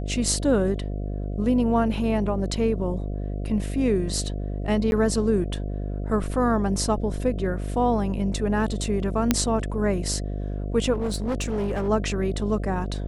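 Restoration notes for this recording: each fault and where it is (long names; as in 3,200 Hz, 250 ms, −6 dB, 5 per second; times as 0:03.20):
mains buzz 50 Hz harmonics 14 −29 dBFS
0:04.91–0:04.92: drop-out 11 ms
0:09.31: click −4 dBFS
0:10.93–0:11.89: clipping −22 dBFS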